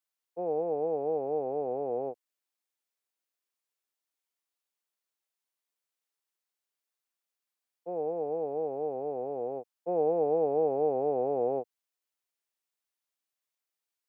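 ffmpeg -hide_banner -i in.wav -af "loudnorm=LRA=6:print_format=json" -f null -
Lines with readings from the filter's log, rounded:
"input_i" : "-31.3",
"input_tp" : "-17.8",
"input_lra" : "17.2",
"input_thresh" : "-41.7",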